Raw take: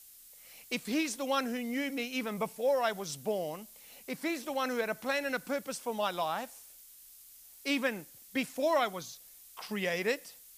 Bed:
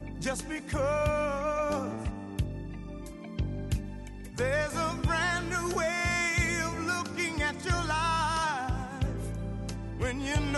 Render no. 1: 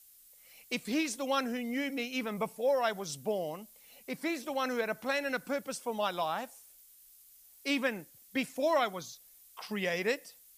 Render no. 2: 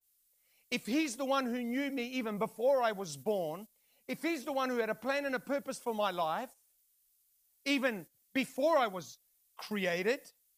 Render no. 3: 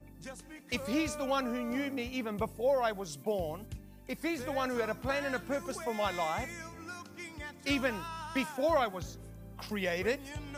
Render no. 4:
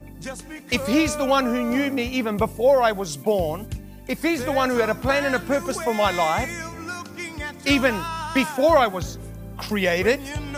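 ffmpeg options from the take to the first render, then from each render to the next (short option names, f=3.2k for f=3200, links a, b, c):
-af "afftdn=nr=6:nf=-55"
-af "agate=range=-14dB:threshold=-46dB:ratio=16:detection=peak,adynamicequalizer=threshold=0.00501:dfrequency=1600:dqfactor=0.7:tfrequency=1600:tqfactor=0.7:attack=5:release=100:ratio=0.375:range=3:mode=cutabove:tftype=highshelf"
-filter_complex "[1:a]volume=-13.5dB[a];[0:a][a]amix=inputs=2:normalize=0"
-af "volume=12dB"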